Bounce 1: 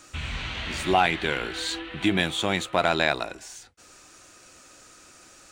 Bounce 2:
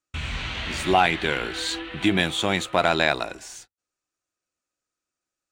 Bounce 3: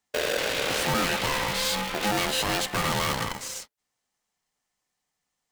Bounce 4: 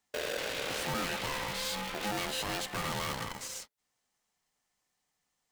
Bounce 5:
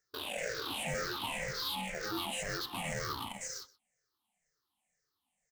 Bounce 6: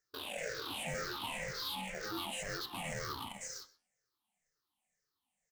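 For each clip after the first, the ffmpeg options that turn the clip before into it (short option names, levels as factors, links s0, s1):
-af "agate=range=0.0126:threshold=0.00562:ratio=16:detection=peak,volume=1.26"
-af "aeval=exprs='(tanh(39.8*val(0)+0.6)-tanh(0.6))/39.8':c=same,aeval=exprs='val(0)*sgn(sin(2*PI*520*n/s))':c=same,volume=2.51"
-af "alimiter=level_in=1.78:limit=0.0631:level=0:latency=1:release=293,volume=0.562"
-af "afftfilt=real='re*pow(10,22/40*sin(2*PI*(0.55*log(max(b,1)*sr/1024/100)/log(2)-(-2)*(pts-256)/sr)))':imag='im*pow(10,22/40*sin(2*PI*(0.55*log(max(b,1)*sr/1024/100)/log(2)-(-2)*(pts-256)/sr)))':win_size=1024:overlap=0.75,aecho=1:1:126:0.0841,volume=0.422"
-af "flanger=delay=3.2:depth=9.8:regen=86:speed=0.43:shape=sinusoidal,volume=1.19"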